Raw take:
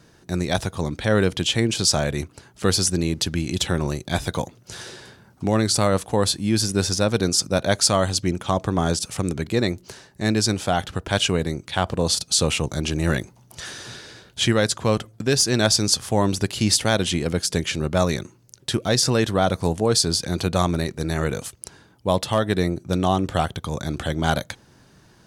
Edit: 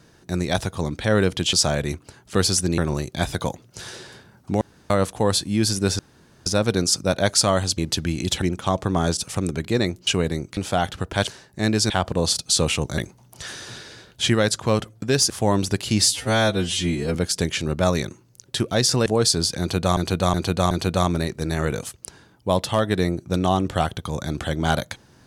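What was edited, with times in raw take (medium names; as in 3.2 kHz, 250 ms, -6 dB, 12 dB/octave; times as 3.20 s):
1.53–1.82 s: delete
3.07–3.71 s: move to 8.24 s
5.54–5.83 s: room tone
6.92 s: insert room tone 0.47 s
9.89–10.52 s: swap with 11.22–11.72 s
12.80–13.16 s: delete
15.48–16.00 s: delete
16.73–17.29 s: stretch 2×
19.20–19.76 s: delete
20.30–20.67 s: loop, 4 plays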